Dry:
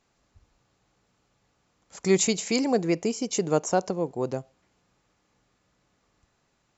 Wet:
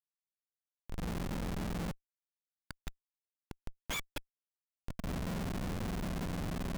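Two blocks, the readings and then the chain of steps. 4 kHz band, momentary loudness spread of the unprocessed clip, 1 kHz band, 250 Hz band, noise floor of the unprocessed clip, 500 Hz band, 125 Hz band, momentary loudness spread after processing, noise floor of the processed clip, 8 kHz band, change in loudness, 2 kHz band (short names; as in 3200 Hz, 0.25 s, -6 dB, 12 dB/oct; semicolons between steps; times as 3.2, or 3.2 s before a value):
-10.5 dB, 9 LU, -11.5 dB, -11.0 dB, -72 dBFS, -19.0 dB, -3.0 dB, 14 LU, under -85 dBFS, n/a, -13.5 dB, -7.5 dB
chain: spectrum mirrored in octaves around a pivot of 1100 Hz; recorder AGC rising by 28 dB/s; flipped gate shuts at -16 dBFS, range -39 dB; Schmitt trigger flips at -34.5 dBFS; gain +5 dB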